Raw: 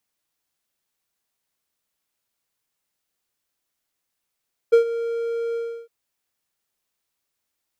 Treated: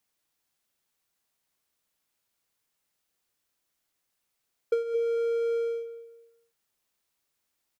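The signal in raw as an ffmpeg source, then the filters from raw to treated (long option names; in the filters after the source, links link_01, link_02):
-f lavfi -i "aevalsrc='0.473*(1-4*abs(mod(464*t+0.25,1)-0.5))':duration=1.159:sample_rate=44100,afade=type=in:duration=0.016,afade=type=out:start_time=0.016:duration=0.104:silence=0.188,afade=type=out:start_time=0.83:duration=0.329"
-filter_complex "[0:a]asplit=2[link_01][link_02];[link_02]adelay=218,lowpass=frequency=2000:poles=1,volume=-12dB,asplit=2[link_03][link_04];[link_04]adelay=218,lowpass=frequency=2000:poles=1,volume=0.29,asplit=2[link_05][link_06];[link_06]adelay=218,lowpass=frequency=2000:poles=1,volume=0.29[link_07];[link_01][link_03][link_05][link_07]amix=inputs=4:normalize=0,acompressor=threshold=-24dB:ratio=12"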